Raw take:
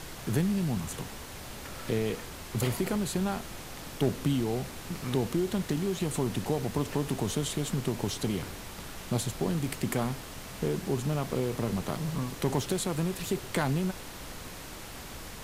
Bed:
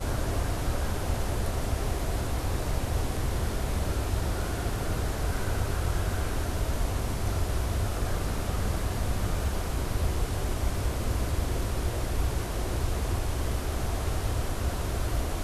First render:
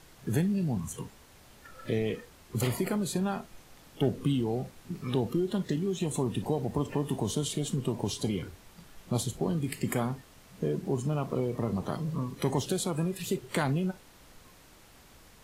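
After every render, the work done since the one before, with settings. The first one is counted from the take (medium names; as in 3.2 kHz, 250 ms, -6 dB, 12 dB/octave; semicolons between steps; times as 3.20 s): noise print and reduce 13 dB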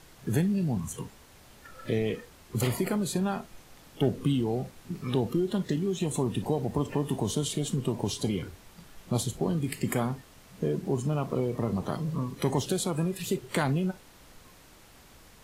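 trim +1.5 dB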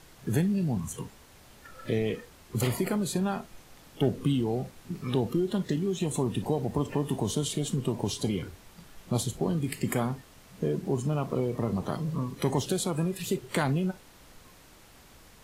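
no audible change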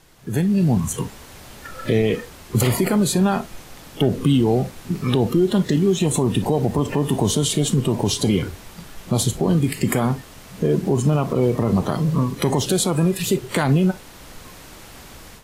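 level rider gain up to 13 dB; peak limiter -8.5 dBFS, peak gain reduction 5.5 dB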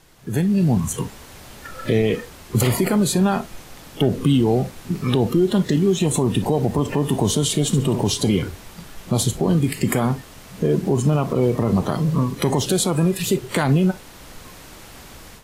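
7.66–8.07 s: flutter echo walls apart 11.9 m, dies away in 0.39 s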